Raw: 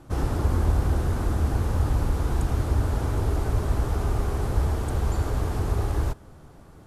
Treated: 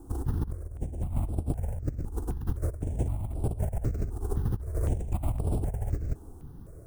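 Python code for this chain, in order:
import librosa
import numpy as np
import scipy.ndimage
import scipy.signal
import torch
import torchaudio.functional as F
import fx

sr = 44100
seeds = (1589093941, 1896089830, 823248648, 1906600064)

y = fx.sample_hold(x, sr, seeds[0], rate_hz=9700.0, jitter_pct=0)
y = fx.curve_eq(y, sr, hz=(180.0, 380.0, 670.0, 1200.0, 2200.0, 4400.0, 7500.0), db=(0, -3, -2, -15, -16, -18, -2))
y = fx.over_compress(y, sr, threshold_db=-28.0, ratio=-0.5)
y = fx.dynamic_eq(y, sr, hz=2200.0, q=0.8, threshold_db=-56.0, ratio=4.0, max_db=5)
y = fx.phaser_held(y, sr, hz=3.9, low_hz=590.0, high_hz=6400.0)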